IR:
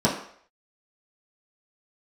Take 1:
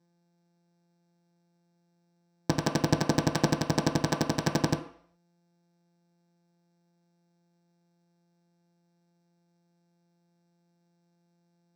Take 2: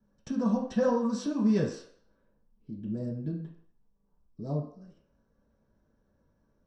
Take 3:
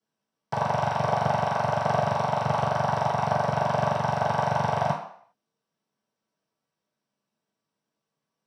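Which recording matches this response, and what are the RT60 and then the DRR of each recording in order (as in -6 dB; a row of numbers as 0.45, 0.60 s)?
2; 0.60, 0.60, 0.60 s; 2.5, -7.0, -15.5 dB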